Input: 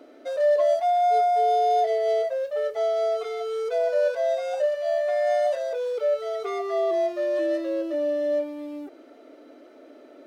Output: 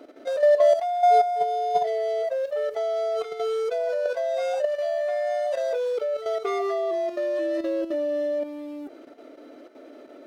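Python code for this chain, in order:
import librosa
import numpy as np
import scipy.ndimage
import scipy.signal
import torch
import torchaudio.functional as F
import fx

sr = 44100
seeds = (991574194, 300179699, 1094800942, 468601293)

y = fx.level_steps(x, sr, step_db=10)
y = y * 10.0 ** (4.5 / 20.0)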